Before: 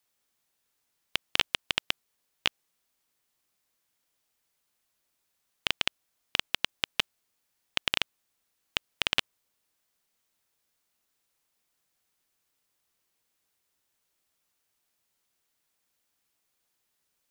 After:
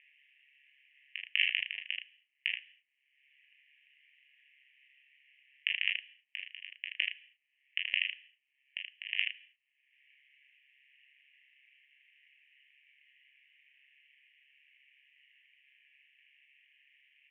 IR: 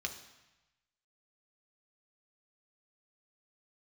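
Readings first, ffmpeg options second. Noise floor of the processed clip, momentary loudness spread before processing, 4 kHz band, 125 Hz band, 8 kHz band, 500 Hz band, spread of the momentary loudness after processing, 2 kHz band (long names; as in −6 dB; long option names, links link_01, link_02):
−80 dBFS, 7 LU, −6.0 dB, below −40 dB, below −30 dB, below −40 dB, 15 LU, −0.5 dB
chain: -filter_complex "[0:a]acompressor=mode=upward:threshold=-32dB:ratio=2.5,aeval=exprs='max(val(0),0)':channel_layout=same,tremolo=f=140:d=0.857,asuperpass=centerf=2300:order=12:qfactor=1.9,asplit=2[link_01][link_02];[link_02]adelay=33,volume=-7dB[link_03];[link_01][link_03]amix=inputs=2:normalize=0,aecho=1:1:20|43|79:0.531|0.447|0.596,asplit=2[link_04][link_05];[1:a]atrim=start_sample=2205,afade=type=out:start_time=0.3:duration=0.01,atrim=end_sample=13671[link_06];[link_05][link_06]afir=irnorm=-1:irlink=0,volume=-7dB[link_07];[link_04][link_07]amix=inputs=2:normalize=0,volume=1.5dB"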